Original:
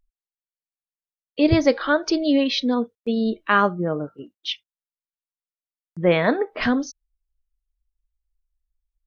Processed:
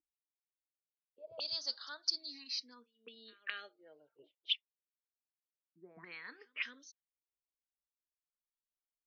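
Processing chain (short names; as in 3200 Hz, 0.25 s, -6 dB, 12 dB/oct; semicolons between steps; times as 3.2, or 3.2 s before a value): pre-echo 0.211 s -23 dB; auto-wah 310–4600 Hz, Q 6, up, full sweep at -22 dBFS; endless phaser +0.28 Hz; gain +1 dB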